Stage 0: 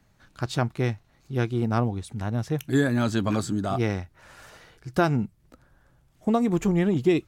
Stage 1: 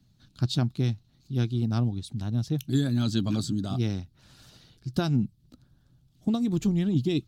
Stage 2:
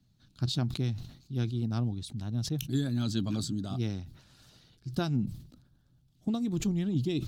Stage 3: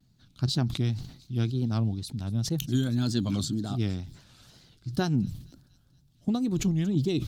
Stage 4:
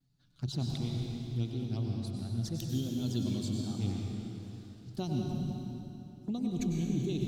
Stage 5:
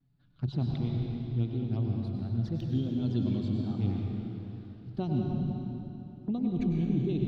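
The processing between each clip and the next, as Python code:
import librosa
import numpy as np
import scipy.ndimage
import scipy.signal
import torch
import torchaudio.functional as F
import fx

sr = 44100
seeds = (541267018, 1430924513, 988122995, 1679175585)

y1 = fx.hpss(x, sr, part='percussive', gain_db=6)
y1 = fx.graphic_eq(y1, sr, hz=(125, 250, 500, 1000, 2000, 4000, 8000), db=(8, 5, -8, -7, -11, 10, -3))
y1 = y1 * 10.0 ** (-7.5 / 20.0)
y2 = fx.sustainer(y1, sr, db_per_s=93.0)
y2 = y2 * 10.0 ** (-5.0 / 20.0)
y3 = fx.wow_flutter(y2, sr, seeds[0], rate_hz=2.1, depth_cents=120.0)
y3 = fx.echo_wet_highpass(y3, sr, ms=233, feedback_pct=57, hz=4300.0, wet_db=-18)
y3 = y3 * 10.0 ** (3.5 / 20.0)
y4 = fx.env_flanger(y3, sr, rest_ms=7.3, full_db=-23.0)
y4 = fx.rev_plate(y4, sr, seeds[1], rt60_s=3.2, hf_ratio=0.8, predelay_ms=85, drr_db=-1.0)
y4 = y4 * 10.0 ** (-8.0 / 20.0)
y5 = fx.air_absorb(y4, sr, metres=380.0)
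y5 = y5 * 10.0 ** (4.0 / 20.0)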